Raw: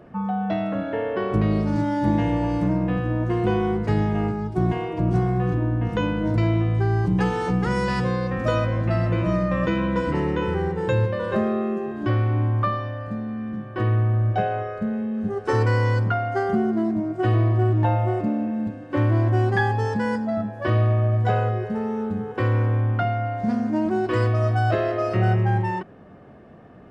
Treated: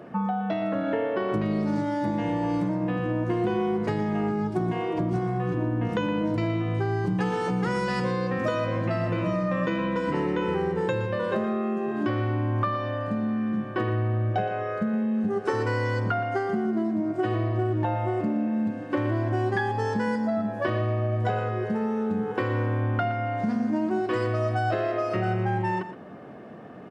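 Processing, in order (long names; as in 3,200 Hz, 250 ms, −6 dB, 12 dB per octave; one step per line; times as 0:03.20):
high-pass filter 160 Hz 12 dB per octave
downward compressor, threshold −28 dBFS, peak gain reduction 10.5 dB
on a send: single-tap delay 119 ms −12 dB
on the sum: level +4.5 dB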